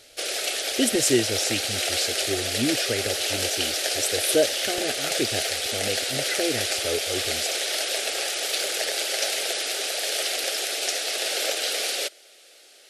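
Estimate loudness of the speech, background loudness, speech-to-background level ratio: −28.0 LKFS, −24.5 LKFS, −3.5 dB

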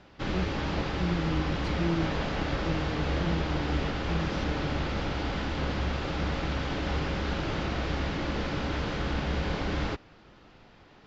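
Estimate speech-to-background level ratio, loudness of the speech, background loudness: −4.0 dB, −35.5 LKFS, −31.5 LKFS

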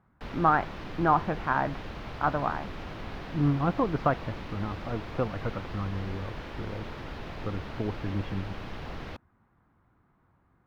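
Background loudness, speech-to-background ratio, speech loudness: −40.5 LKFS, 10.0 dB, −30.5 LKFS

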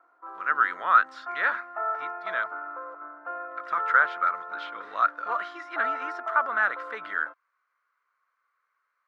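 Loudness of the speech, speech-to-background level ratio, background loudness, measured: −26.5 LKFS, 8.5 dB, −35.0 LKFS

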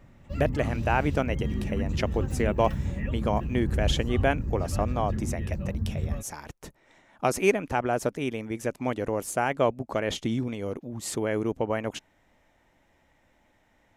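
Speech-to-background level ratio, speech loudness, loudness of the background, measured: 2.0 dB, −29.5 LKFS, −31.5 LKFS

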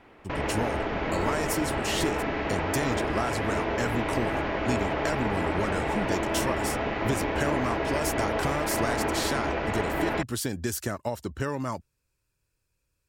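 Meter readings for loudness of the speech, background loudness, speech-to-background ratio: −32.0 LKFS, −29.0 LKFS, −3.0 dB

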